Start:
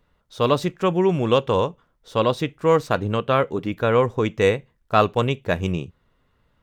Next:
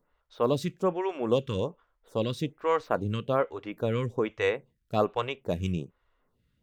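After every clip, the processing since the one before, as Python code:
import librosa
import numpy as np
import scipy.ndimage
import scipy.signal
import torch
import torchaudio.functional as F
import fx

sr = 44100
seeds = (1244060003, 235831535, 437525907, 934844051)

y = fx.stagger_phaser(x, sr, hz=1.2)
y = y * 10.0 ** (-4.5 / 20.0)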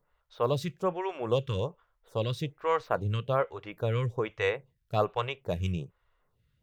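y = fx.graphic_eq(x, sr, hz=(125, 250, 8000), db=(5, -11, -3))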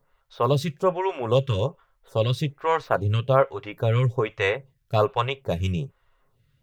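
y = x + 0.42 * np.pad(x, (int(7.4 * sr / 1000.0), 0))[:len(x)]
y = y * 10.0 ** (6.0 / 20.0)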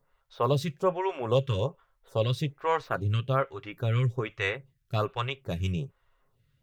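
y = fx.spec_box(x, sr, start_s=2.9, length_s=2.74, low_hz=400.0, high_hz=1100.0, gain_db=-6)
y = y * 10.0 ** (-4.0 / 20.0)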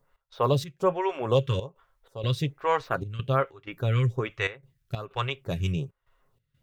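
y = fx.step_gate(x, sr, bpm=94, pattern='x.xx.xxxx', floor_db=-12.0, edge_ms=4.5)
y = y * 10.0 ** (2.0 / 20.0)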